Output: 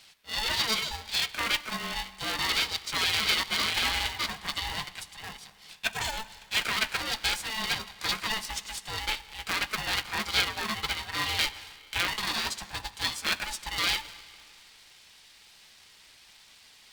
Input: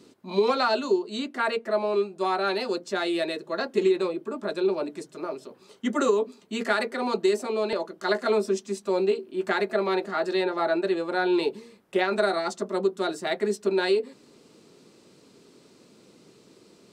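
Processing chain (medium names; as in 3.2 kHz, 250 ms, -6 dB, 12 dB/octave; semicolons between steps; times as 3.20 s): 2.46–4.81 s: chunks repeated in reverse 487 ms, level -2 dB; high-pass 730 Hz 12 dB/octave; peak limiter -21 dBFS, peak gain reduction 8.5 dB; resonant high shelf 1.6 kHz +12.5 dB, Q 1.5; flange 0.36 Hz, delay 0.8 ms, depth 8 ms, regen -50%; peaking EQ 6.8 kHz -7 dB 0.77 oct; reverberation RT60 2.3 s, pre-delay 10 ms, DRR 16 dB; polarity switched at an audio rate 440 Hz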